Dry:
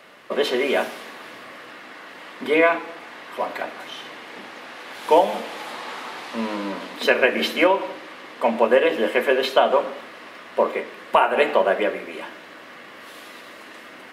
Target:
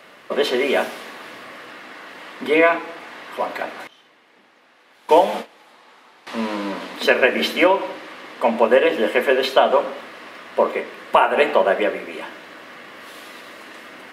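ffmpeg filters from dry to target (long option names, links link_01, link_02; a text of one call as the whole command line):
ffmpeg -i in.wav -filter_complex "[0:a]asettb=1/sr,asplit=3[link_01][link_02][link_03];[link_01]atrim=end=3.874[link_04];[link_02]atrim=start=3.87:end=6.27,asetpts=PTS-STARTPTS,afade=type=in:duration=0.004:curve=qsin,afade=type=out:start_time=2.396:duration=0.004:curve=qsin,agate=range=-18dB:threshold=-28dB:ratio=16:detection=peak[link_05];[link_03]atrim=start=6.266[link_06];[link_04][link_05]acrossfade=duration=0.004:curve1=hsin:curve2=qsin[link_07];[link_07][link_06]acrossfade=duration=0.004:curve1=qsin:curve2=hsin,volume=2dB" out.wav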